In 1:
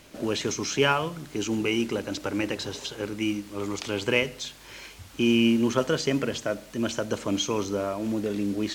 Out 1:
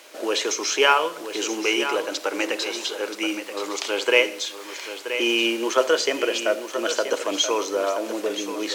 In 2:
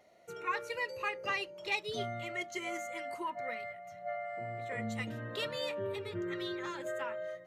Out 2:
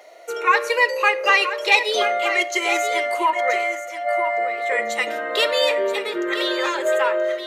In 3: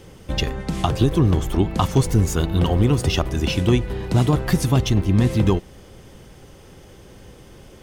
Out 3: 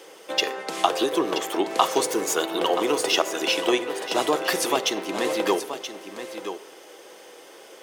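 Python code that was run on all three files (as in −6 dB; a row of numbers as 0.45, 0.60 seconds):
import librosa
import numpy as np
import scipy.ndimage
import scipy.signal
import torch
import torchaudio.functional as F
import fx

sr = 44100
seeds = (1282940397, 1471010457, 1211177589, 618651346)

p1 = scipy.signal.sosfilt(scipy.signal.butter(4, 400.0, 'highpass', fs=sr, output='sos'), x)
p2 = p1 + fx.echo_single(p1, sr, ms=978, db=-10.0, dry=0)
p3 = fx.room_shoebox(p2, sr, seeds[0], volume_m3=2200.0, walls='furnished', distance_m=0.64)
y = p3 * 10.0 ** (-2 / 20.0) / np.max(np.abs(p3))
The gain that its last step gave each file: +6.5, +18.0, +3.5 decibels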